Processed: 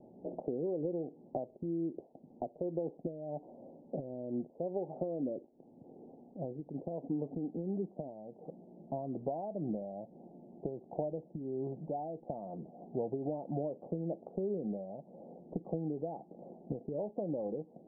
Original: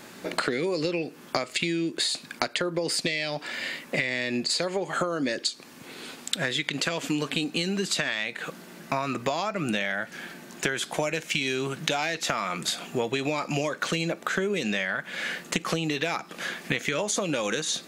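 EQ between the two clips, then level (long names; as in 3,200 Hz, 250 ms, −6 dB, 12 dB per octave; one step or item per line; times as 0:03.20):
Butterworth low-pass 800 Hz 72 dB per octave
−7.5 dB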